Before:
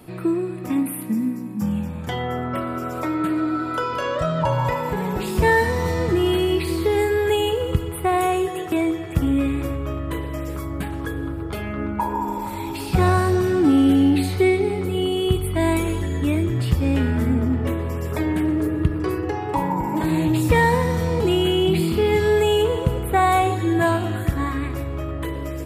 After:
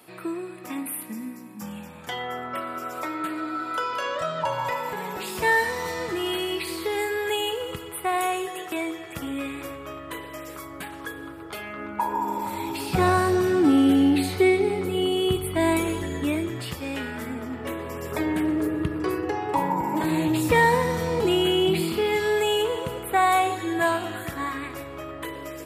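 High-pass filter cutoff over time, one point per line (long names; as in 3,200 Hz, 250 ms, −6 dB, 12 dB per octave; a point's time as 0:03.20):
high-pass filter 6 dB per octave
0:11.80 970 Hz
0:12.48 240 Hz
0:16.10 240 Hz
0:16.86 1,000 Hz
0:17.47 1,000 Hz
0:18.20 300 Hz
0:21.70 300 Hz
0:22.11 680 Hz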